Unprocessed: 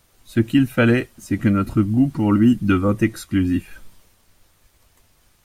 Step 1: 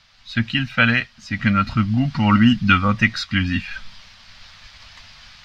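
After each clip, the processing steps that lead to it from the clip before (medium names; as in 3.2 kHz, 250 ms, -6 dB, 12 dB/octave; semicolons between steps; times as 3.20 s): FFT filter 230 Hz 0 dB, 340 Hz -19 dB, 640 Hz 0 dB, 1.7 kHz +10 dB, 4.9 kHz +13 dB, 10 kHz -22 dB; level rider gain up to 10.5 dB; trim -1 dB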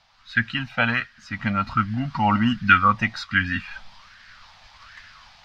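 sweeping bell 1.3 Hz 760–1700 Hz +15 dB; trim -7.5 dB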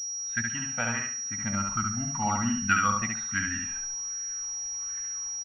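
on a send: feedback delay 70 ms, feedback 31%, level -3.5 dB; on the sum: class-D stage that switches slowly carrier 5.7 kHz; trim -9 dB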